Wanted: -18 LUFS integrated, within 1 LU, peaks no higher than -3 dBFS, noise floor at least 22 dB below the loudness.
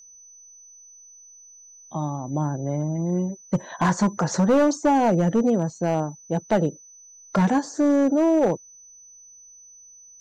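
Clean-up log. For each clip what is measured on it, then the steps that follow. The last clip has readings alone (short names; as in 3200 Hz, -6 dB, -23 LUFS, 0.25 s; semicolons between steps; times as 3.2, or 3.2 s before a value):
clipped 1.4%; flat tops at -13.5 dBFS; steady tone 6000 Hz; tone level -46 dBFS; loudness -22.5 LUFS; peak -13.5 dBFS; loudness target -18.0 LUFS
-> clip repair -13.5 dBFS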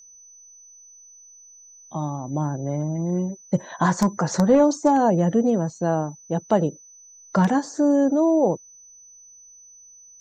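clipped 0.0%; steady tone 6000 Hz; tone level -46 dBFS
-> notch 6000 Hz, Q 30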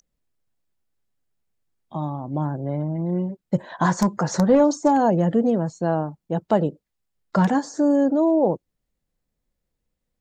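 steady tone none; loudness -22.0 LUFS; peak -5.0 dBFS; loudness target -18.0 LUFS
-> gain +4 dB; limiter -3 dBFS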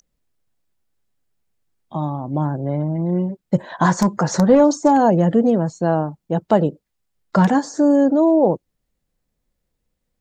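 loudness -18.0 LUFS; peak -3.0 dBFS; noise floor -76 dBFS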